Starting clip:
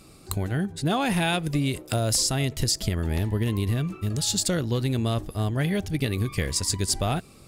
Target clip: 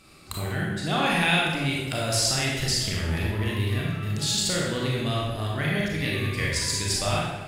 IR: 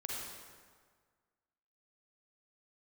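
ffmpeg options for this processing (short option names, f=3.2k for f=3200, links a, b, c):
-filter_complex "[0:a]equalizer=f=2.2k:t=o:w=2.6:g=9[a];[1:a]atrim=start_sample=2205,asetrate=66150,aresample=44100[b];[a][b]afir=irnorm=-1:irlink=0"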